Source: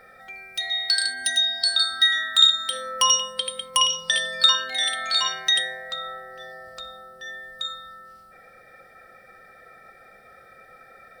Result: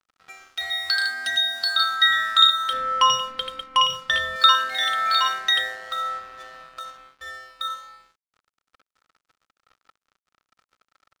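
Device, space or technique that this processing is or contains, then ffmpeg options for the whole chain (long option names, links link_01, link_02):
pocket radio on a weak battery: -filter_complex "[0:a]highpass=320,lowpass=4200,aeval=exprs='sgn(val(0))*max(abs(val(0))-0.0075,0)':channel_layout=same,equalizer=frequency=1300:width_type=o:width=0.5:gain=11,asettb=1/sr,asplit=3[link_01][link_02][link_03];[link_01]atrim=end=2.734[link_04];[link_02]atrim=start=2.73:end=4.36,asetpts=PTS-STARTPTS,afade=type=in:duration=0.004:curve=qsin,afade=type=out:start_time=1.626:duration=0.004:curve=qsin,bass=frequency=250:gain=11,treble=frequency=4000:gain=-6[link_05];[link_03]atrim=start=4.356[link_06];[link_04][link_05]acrossfade=duration=0.004:curve1=hsin:curve2=qsin[link_07];[link_07][link_06]acrossfade=duration=0.004:curve1=qsin:curve2=hsin,volume=1.5dB"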